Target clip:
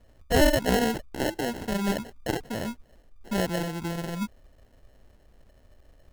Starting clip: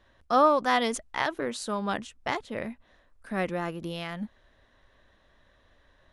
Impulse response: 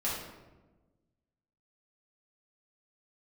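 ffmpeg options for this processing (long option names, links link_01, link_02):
-af "lowshelf=frequency=190:gain=10,acrusher=samples=37:mix=1:aa=0.000001"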